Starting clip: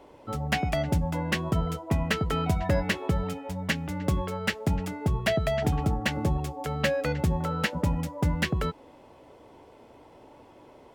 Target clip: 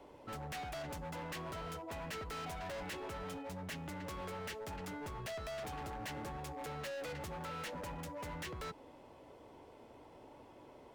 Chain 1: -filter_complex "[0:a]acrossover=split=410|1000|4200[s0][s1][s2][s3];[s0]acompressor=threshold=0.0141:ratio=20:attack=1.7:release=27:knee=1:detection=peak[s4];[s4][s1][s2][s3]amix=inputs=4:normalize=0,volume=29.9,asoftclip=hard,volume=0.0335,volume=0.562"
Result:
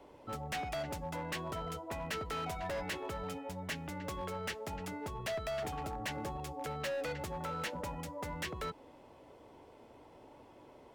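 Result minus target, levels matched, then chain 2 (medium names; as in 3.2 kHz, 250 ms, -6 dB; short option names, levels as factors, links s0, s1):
overload inside the chain: distortion -4 dB
-filter_complex "[0:a]acrossover=split=410|1000|4200[s0][s1][s2][s3];[s0]acompressor=threshold=0.0141:ratio=20:attack=1.7:release=27:knee=1:detection=peak[s4];[s4][s1][s2][s3]amix=inputs=4:normalize=0,volume=66.8,asoftclip=hard,volume=0.015,volume=0.562"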